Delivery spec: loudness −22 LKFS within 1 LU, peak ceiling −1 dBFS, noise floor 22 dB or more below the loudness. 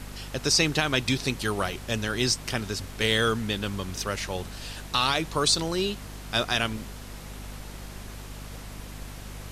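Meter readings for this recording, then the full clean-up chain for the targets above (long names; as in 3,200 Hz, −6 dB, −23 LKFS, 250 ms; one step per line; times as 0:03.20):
mains hum 50 Hz; hum harmonics up to 250 Hz; level of the hum −39 dBFS; background noise floor −41 dBFS; target noise floor −49 dBFS; integrated loudness −26.5 LKFS; sample peak −9.5 dBFS; target loudness −22.0 LKFS
→ hum removal 50 Hz, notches 5
noise reduction from a noise print 8 dB
level +4.5 dB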